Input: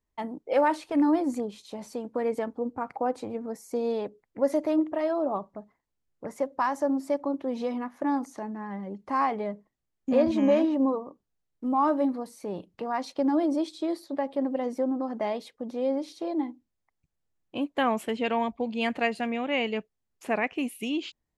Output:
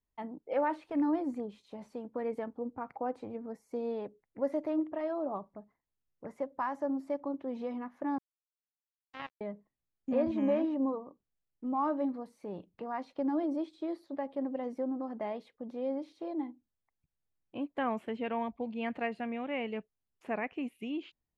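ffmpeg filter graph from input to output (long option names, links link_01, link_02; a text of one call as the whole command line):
ffmpeg -i in.wav -filter_complex "[0:a]asettb=1/sr,asplit=3[link_01][link_02][link_03];[link_01]atrim=end=8.184[link_04];[link_02]atrim=start=8.18:end=9.41,asetpts=PTS-STARTPTS,afade=type=in:duration=0.004:curve=qsin,afade=type=out:start_time=1.226:duration=0.004:curve=qsin,acrusher=bits=2:mix=0:aa=0.5,highpass=frequency=160:poles=1[link_05];[link_03]atrim=start=9.406[link_06];[link_04][link_05]acrossfade=duration=0.004:curve1=hsin:curve2=qsin[link_07];[link_07][link_06]acrossfade=duration=0.004:curve1=qsin:curve2=hsin,acrossover=split=3000[link_08][link_09];[link_09]acompressor=threshold=-52dB:ratio=4:attack=1:release=60[link_10];[link_08][link_10]amix=inputs=2:normalize=0,bass=frequency=250:gain=2,treble=frequency=4000:gain=-9,volume=-7.5dB" out.wav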